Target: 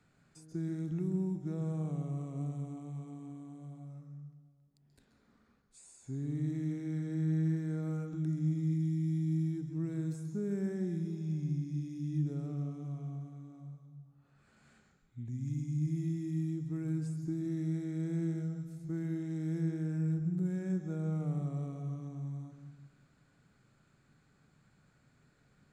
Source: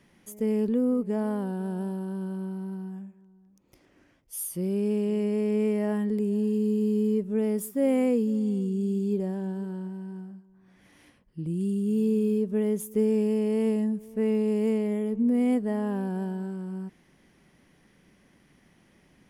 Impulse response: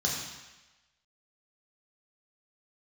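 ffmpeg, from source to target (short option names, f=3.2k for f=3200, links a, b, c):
-filter_complex "[0:a]acrossover=split=430|2500[a][b][c];[a]acompressor=threshold=-26dB:ratio=4[d];[b]acompressor=threshold=-36dB:ratio=4[e];[c]acompressor=threshold=-52dB:ratio=4[f];[d][e][f]amix=inputs=3:normalize=0,asetrate=33075,aresample=44100,asplit=2[g][h];[1:a]atrim=start_sample=2205,adelay=132[i];[h][i]afir=irnorm=-1:irlink=0,volume=-15.5dB[j];[g][j]amix=inputs=2:normalize=0,volume=-8.5dB"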